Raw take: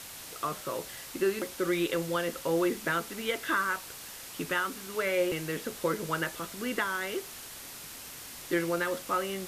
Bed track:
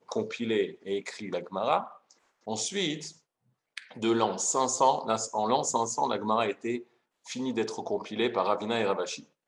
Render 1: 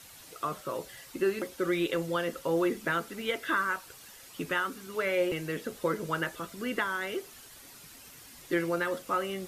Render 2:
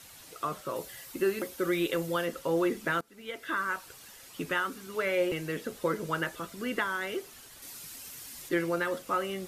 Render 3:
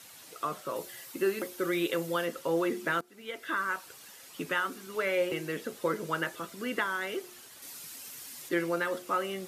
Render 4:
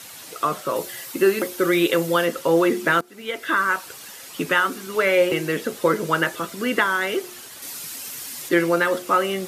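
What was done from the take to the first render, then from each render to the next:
noise reduction 9 dB, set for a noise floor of -45 dBFS
0.76–2.26 s: treble shelf 12 kHz +11 dB; 3.01–3.82 s: fade in, from -24 dB; 7.62–8.49 s: treble shelf 3.6 kHz +8 dB
Bessel high-pass 170 Hz, order 2; de-hum 357.9 Hz, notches 2
trim +11 dB

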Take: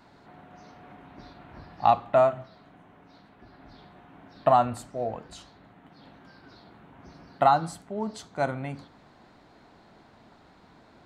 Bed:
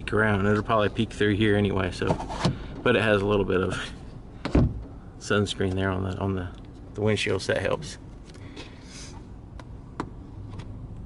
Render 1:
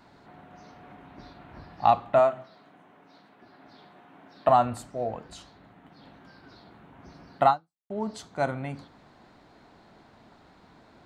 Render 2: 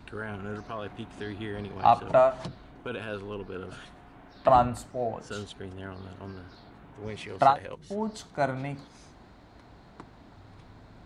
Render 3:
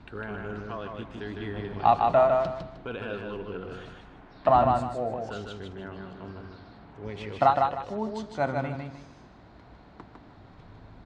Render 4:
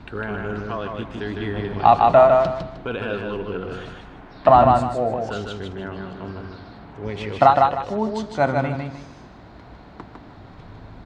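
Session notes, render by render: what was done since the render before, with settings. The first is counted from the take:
2.19–4.49 s: Bessel high-pass 230 Hz; 7.50–7.90 s: fade out exponential
add bed -14.5 dB
distance through air 110 m; feedback delay 154 ms, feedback 28%, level -4 dB
trim +8 dB; peak limiter -2 dBFS, peak gain reduction 2 dB

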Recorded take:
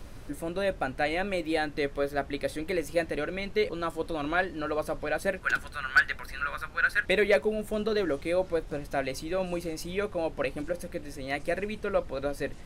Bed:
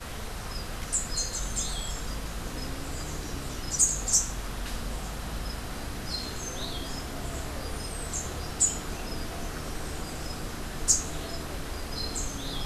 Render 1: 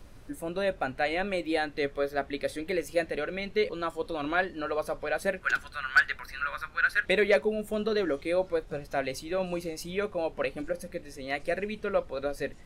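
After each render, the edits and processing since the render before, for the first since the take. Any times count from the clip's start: noise print and reduce 6 dB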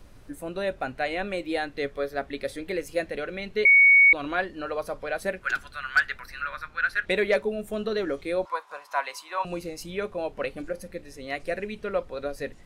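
3.65–4.13 s: bleep 2.23 kHz -12 dBFS; 6.42–7.10 s: treble shelf 9.1 kHz -7 dB; 8.45–9.45 s: resonant high-pass 1 kHz, resonance Q 11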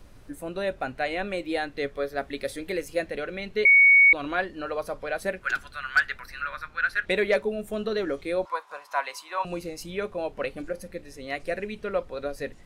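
2.18–2.85 s: treble shelf 5.8 kHz +6 dB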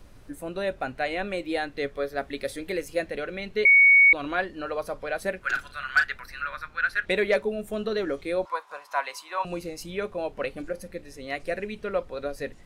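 5.40–6.04 s: doubling 38 ms -9 dB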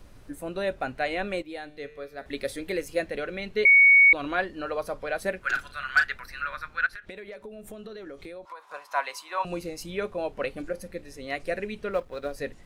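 1.42–2.26 s: feedback comb 150 Hz, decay 0.86 s, mix 70%; 6.86–8.74 s: compression 16:1, threshold -37 dBFS; 11.93–12.34 s: companding laws mixed up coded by A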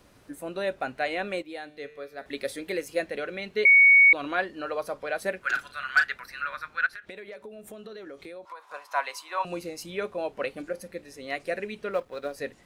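high-pass 210 Hz 6 dB/octave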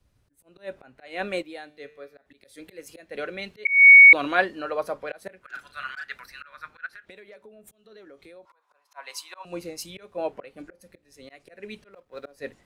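slow attack 223 ms; three bands expanded up and down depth 70%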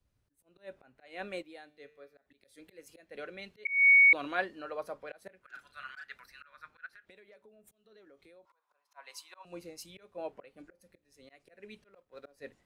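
trim -10.5 dB

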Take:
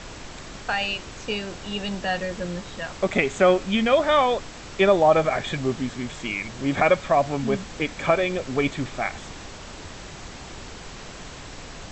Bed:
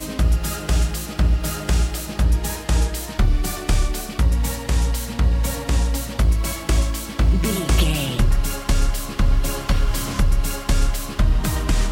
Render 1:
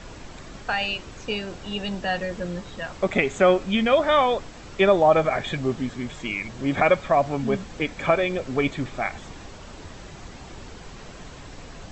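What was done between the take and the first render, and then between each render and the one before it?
noise reduction 6 dB, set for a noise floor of -40 dBFS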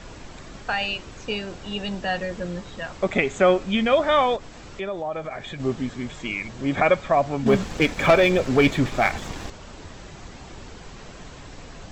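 4.36–5.60 s: compression 2:1, threshold -36 dBFS; 7.46–9.50 s: waveshaping leveller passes 2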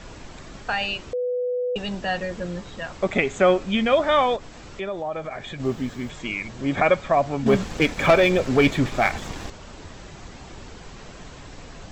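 1.13–1.76 s: bleep 495 Hz -22 dBFS; 5.65–6.10 s: word length cut 10-bit, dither none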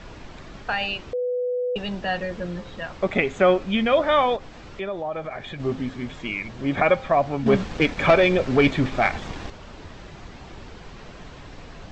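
low-pass 4.7 kHz 12 dB/octave; de-hum 262.6 Hz, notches 3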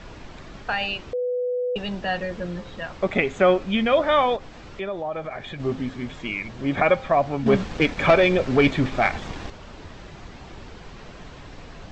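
no audible change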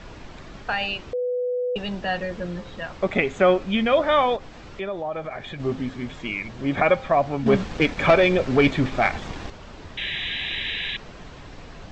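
9.97–10.97 s: painted sound noise 1.6–4 kHz -29 dBFS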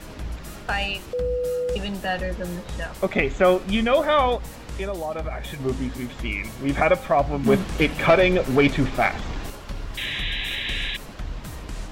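add bed -15 dB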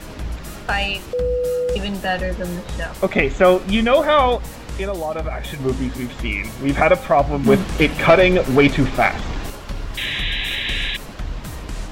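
trim +4.5 dB

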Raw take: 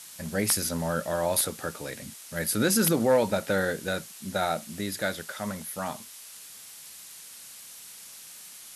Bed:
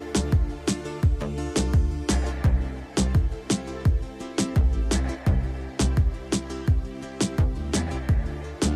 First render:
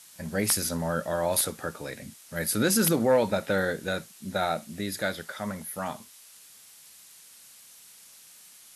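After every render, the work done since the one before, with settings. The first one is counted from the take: noise print and reduce 6 dB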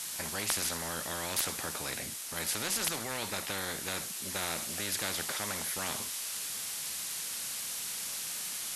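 gain riding within 4 dB 2 s; spectrum-flattening compressor 4:1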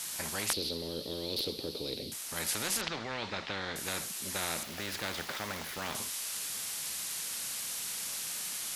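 0.53–2.12 s: FFT filter 200 Hz 0 dB, 310 Hz +6 dB, 460 Hz +9 dB, 700 Hz -10 dB, 1.7 kHz -21 dB, 4.3 kHz +8 dB, 7 kHz -21 dB, 13 kHz -10 dB; 2.81–3.76 s: low-pass 4.5 kHz 24 dB/octave; 4.63–5.95 s: median filter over 5 samples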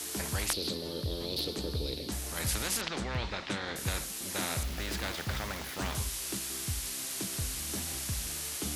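add bed -15.5 dB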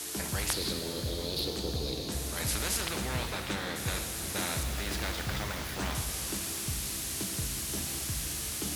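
pitch-shifted reverb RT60 3.8 s, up +7 st, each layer -8 dB, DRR 5.5 dB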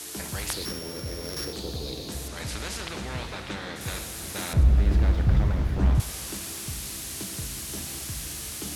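0.65–1.53 s: sorted samples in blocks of 8 samples; 2.28–3.81 s: distance through air 53 m; 4.53–6.00 s: tilt EQ -4.5 dB/octave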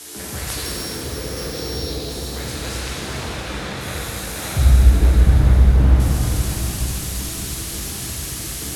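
plate-style reverb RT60 5 s, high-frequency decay 0.9×, DRR -6 dB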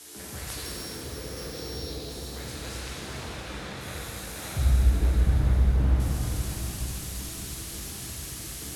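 trim -9.5 dB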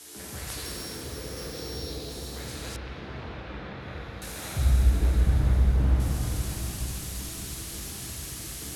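2.76–4.22 s: distance through air 310 m

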